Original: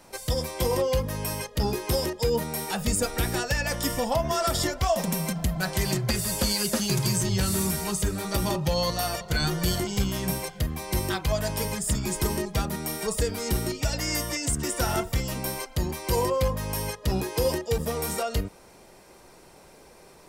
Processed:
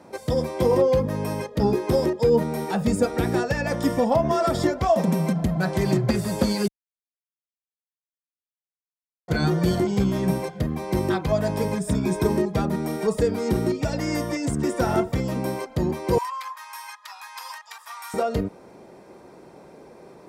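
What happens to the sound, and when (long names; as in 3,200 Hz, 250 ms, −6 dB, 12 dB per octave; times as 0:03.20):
0:06.68–0:09.28: silence
0:11.77–0:12.28: EQ curve with evenly spaced ripples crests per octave 1.6, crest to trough 7 dB
0:16.18–0:18.14: Butterworth high-pass 940 Hz 48 dB per octave
whole clip: high-pass filter 230 Hz 12 dB per octave; spectral tilt −4 dB per octave; notch filter 2,900 Hz, Q 13; level +3 dB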